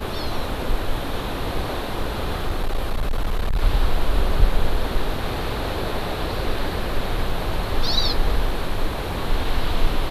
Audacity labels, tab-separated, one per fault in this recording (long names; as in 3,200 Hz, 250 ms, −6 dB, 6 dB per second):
1.990000	3.630000	clipping −17 dBFS